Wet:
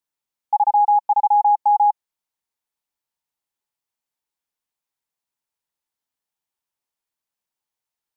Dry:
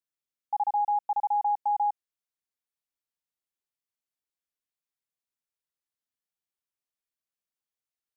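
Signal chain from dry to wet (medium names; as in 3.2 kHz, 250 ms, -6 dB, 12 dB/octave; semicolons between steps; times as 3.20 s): peaking EQ 890 Hz +8 dB 0.39 oct; trim +4.5 dB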